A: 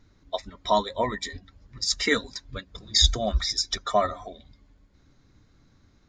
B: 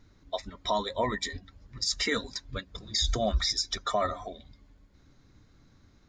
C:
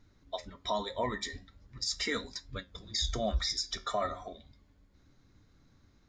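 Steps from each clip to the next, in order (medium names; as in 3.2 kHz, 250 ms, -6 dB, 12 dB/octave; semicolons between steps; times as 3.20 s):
peak limiter -18 dBFS, peak gain reduction 11 dB
flange 0.39 Hz, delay 9.7 ms, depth 7.6 ms, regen -71%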